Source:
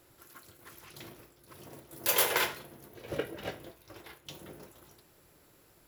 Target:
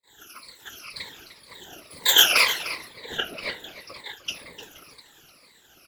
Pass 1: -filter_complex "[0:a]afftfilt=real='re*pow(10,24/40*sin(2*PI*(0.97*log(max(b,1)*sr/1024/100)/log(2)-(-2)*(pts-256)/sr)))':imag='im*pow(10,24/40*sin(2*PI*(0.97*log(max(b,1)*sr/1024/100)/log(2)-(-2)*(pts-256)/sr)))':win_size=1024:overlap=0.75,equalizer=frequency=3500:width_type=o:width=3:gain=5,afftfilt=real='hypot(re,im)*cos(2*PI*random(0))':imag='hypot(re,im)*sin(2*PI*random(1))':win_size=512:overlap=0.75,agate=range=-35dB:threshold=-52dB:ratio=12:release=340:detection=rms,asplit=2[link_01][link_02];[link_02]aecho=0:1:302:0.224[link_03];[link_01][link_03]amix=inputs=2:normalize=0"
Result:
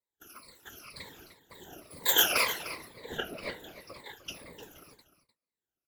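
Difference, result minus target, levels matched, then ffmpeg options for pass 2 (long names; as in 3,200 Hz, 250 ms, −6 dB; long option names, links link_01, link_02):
4,000 Hz band −3.5 dB
-filter_complex "[0:a]afftfilt=real='re*pow(10,24/40*sin(2*PI*(0.97*log(max(b,1)*sr/1024/100)/log(2)-(-2)*(pts-256)/sr)))':imag='im*pow(10,24/40*sin(2*PI*(0.97*log(max(b,1)*sr/1024/100)/log(2)-(-2)*(pts-256)/sr)))':win_size=1024:overlap=0.75,equalizer=frequency=3500:width_type=o:width=3:gain=16,afftfilt=real='hypot(re,im)*cos(2*PI*random(0))':imag='hypot(re,im)*sin(2*PI*random(1))':win_size=512:overlap=0.75,agate=range=-35dB:threshold=-52dB:ratio=12:release=340:detection=rms,asplit=2[link_01][link_02];[link_02]aecho=0:1:302:0.224[link_03];[link_01][link_03]amix=inputs=2:normalize=0"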